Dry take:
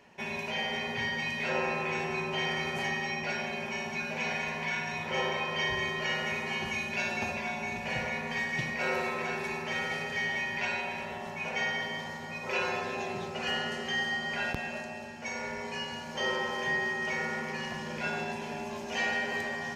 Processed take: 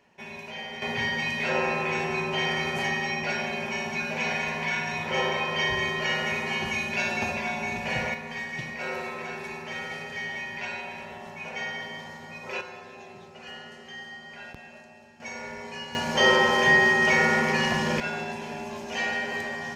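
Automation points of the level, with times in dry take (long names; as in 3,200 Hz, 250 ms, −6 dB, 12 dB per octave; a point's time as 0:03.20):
−4.5 dB
from 0:00.82 +4.5 dB
from 0:08.14 −2 dB
from 0:12.61 −10 dB
from 0:15.20 −1 dB
from 0:15.95 +12 dB
from 0:18.00 +2 dB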